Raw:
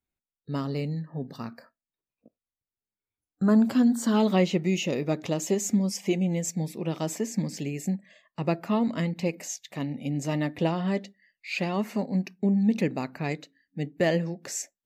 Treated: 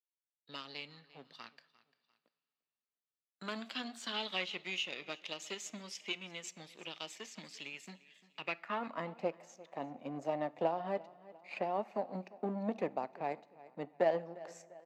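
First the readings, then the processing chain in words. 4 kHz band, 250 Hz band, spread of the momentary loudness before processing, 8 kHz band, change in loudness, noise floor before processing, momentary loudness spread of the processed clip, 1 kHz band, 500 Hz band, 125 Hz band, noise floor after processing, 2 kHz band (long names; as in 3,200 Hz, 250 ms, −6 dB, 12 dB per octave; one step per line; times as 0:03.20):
−3.0 dB, −20.0 dB, 13 LU, −16.0 dB, −12.0 dB, below −85 dBFS, 16 LU, −4.5 dB, −8.5 dB, −22.5 dB, below −85 dBFS, −6.5 dB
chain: power curve on the samples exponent 1.4
band-pass filter sweep 3,300 Hz → 730 Hz, 0:08.35–0:09.13
repeating echo 347 ms, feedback 29%, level −23 dB
coupled-rooms reverb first 0.56 s, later 2.7 s, from −16 dB, DRR 19.5 dB
multiband upward and downward compressor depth 40%
level +5.5 dB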